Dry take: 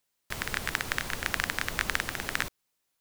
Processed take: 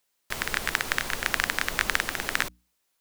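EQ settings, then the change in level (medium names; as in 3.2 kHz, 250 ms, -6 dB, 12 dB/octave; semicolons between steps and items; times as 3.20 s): peaking EQ 96 Hz -6.5 dB 1.8 oct; hum notches 60/120/180/240/300 Hz; +4.0 dB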